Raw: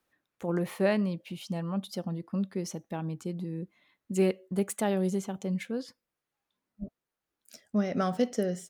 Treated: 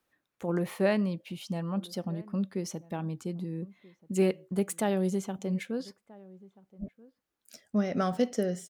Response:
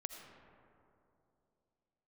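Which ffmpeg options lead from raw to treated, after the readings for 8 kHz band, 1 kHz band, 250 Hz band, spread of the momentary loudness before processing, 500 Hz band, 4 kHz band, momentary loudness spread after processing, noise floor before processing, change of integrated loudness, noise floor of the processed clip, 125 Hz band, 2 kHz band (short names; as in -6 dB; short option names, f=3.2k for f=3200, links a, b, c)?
0.0 dB, 0.0 dB, 0.0 dB, 11 LU, 0.0 dB, 0.0 dB, 16 LU, under -85 dBFS, 0.0 dB, -83 dBFS, 0.0 dB, 0.0 dB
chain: -filter_complex "[0:a]asplit=2[a][b];[b]adelay=1283,volume=-22dB,highshelf=f=4k:g=-28.9[c];[a][c]amix=inputs=2:normalize=0"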